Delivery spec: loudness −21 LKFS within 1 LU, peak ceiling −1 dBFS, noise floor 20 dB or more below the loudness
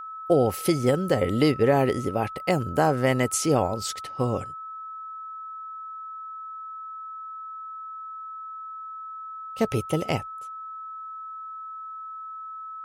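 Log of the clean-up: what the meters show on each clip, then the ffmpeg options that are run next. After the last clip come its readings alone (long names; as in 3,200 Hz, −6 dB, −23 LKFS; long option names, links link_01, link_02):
interfering tone 1,300 Hz; level of the tone −35 dBFS; integrated loudness −28.0 LKFS; sample peak −8.0 dBFS; target loudness −21.0 LKFS
→ -af "bandreject=frequency=1300:width=30"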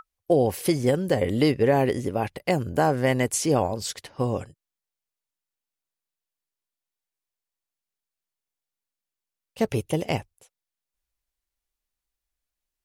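interfering tone none found; integrated loudness −24.5 LKFS; sample peak −8.0 dBFS; target loudness −21.0 LKFS
→ -af "volume=3.5dB"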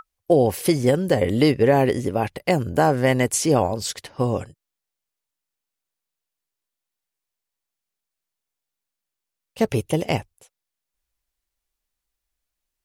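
integrated loudness −21.0 LKFS; sample peak −4.5 dBFS; background noise floor −85 dBFS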